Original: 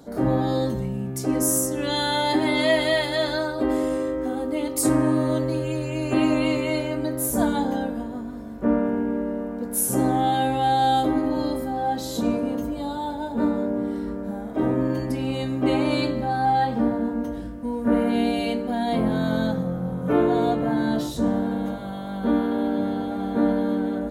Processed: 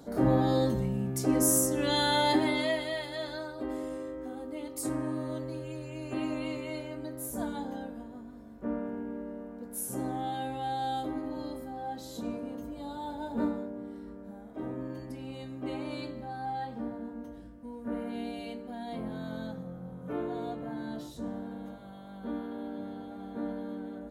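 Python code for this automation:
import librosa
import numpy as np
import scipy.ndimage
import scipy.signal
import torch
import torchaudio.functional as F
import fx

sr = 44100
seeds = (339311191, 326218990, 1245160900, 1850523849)

y = fx.gain(x, sr, db=fx.line((2.3, -3.0), (2.87, -13.0), (12.59, -13.0), (13.4, -6.5), (13.72, -15.0)))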